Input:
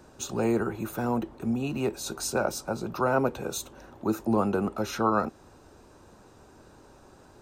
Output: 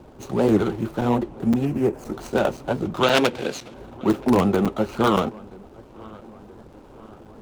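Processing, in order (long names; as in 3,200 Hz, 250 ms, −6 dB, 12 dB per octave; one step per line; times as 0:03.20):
running median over 25 samples
in parallel at −9 dB: wrap-around overflow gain 17 dB
0:03.03–0:03.74: on the sum: meter weighting curve D
on a send: feedback echo with a low-pass in the loop 977 ms, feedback 60%, low-pass 2,500 Hz, level −23 dB
on the sum: flanger 1.8 Hz, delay 0.2 ms, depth 7.8 ms, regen −53%
0:01.65–0:02.13: parametric band 3,700 Hz −12.5 dB 0.77 octaves
regular buffer underruns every 0.52 s, samples 256, zero, from 0:00.49
wow of a warped record 78 rpm, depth 160 cents
level +9 dB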